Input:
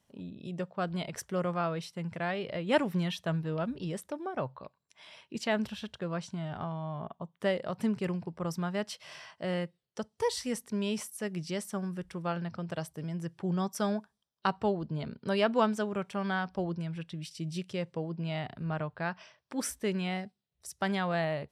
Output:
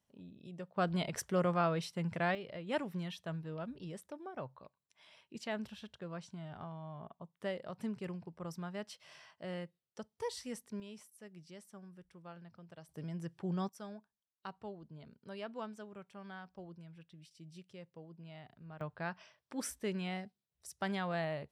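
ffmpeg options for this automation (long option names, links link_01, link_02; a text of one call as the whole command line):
ffmpeg -i in.wav -af "asetnsamples=nb_out_samples=441:pad=0,asendcmd='0.76 volume volume 0dB;2.35 volume volume -9.5dB;10.8 volume volume -18dB;12.89 volume volume -5.5dB;13.69 volume volume -17dB;18.81 volume volume -6dB',volume=-10dB" out.wav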